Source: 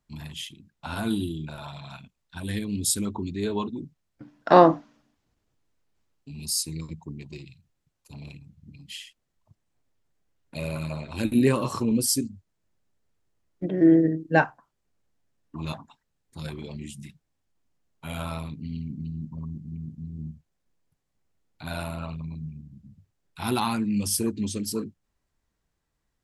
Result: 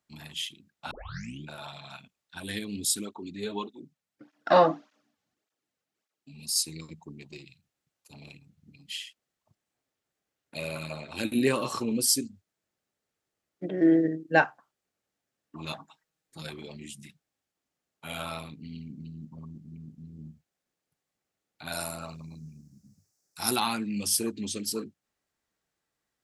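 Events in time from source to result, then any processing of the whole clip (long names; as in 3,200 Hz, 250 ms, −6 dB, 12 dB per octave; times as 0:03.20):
0:00.91: tape start 0.53 s
0:02.85–0:06.56: through-zero flanger with one copy inverted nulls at 1.7 Hz, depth 3.3 ms
0:15.77–0:16.42: comb filter 6.3 ms, depth 58%
0:21.72–0:23.56: high shelf with overshoot 4,300 Hz +9.5 dB, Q 3
whole clip: high-pass filter 390 Hz 6 dB per octave; notch filter 990 Hz, Q 9.7; dynamic equaliser 3,500 Hz, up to +3 dB, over −46 dBFS, Q 1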